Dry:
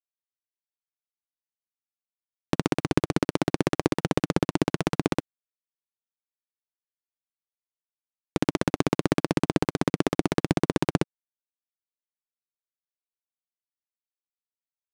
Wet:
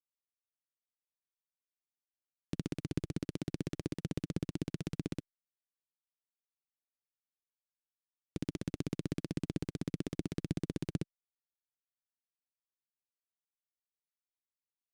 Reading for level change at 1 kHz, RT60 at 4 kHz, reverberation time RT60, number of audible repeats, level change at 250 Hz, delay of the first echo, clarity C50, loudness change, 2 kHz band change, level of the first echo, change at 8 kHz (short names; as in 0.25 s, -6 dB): -25.5 dB, none, none, none, -12.5 dB, none, none, -13.0 dB, -19.5 dB, none, -13.5 dB